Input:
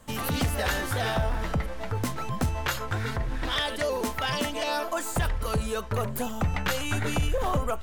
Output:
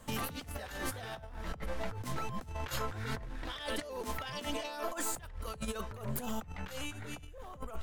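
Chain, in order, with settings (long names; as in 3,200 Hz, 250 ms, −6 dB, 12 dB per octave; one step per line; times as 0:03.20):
compressor whose output falls as the input rises −32 dBFS, ratio −0.5
level −6 dB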